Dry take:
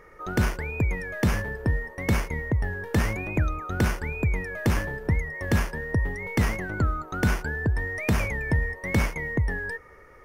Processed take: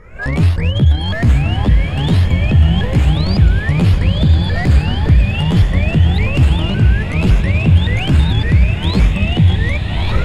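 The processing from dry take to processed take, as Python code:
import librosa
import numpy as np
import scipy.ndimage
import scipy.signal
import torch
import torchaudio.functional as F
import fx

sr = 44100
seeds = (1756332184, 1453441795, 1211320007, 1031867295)

y = fx.pitch_ramps(x, sr, semitones=12.0, every_ms=562)
y = fx.recorder_agc(y, sr, target_db=-18.0, rise_db_per_s=57.0, max_gain_db=30)
y = np.clip(y, -10.0 ** (-20.5 / 20.0), 10.0 ** (-20.5 / 20.0))
y = scipy.signal.sosfilt(scipy.signal.butter(2, 8400.0, 'lowpass', fs=sr, output='sos'), y)
y = fx.bass_treble(y, sr, bass_db=14, treble_db=2)
y = fx.notch(y, sr, hz=5900.0, q=9.3)
y = fx.rev_bloom(y, sr, seeds[0], attack_ms=1440, drr_db=5.5)
y = y * librosa.db_to_amplitude(2.5)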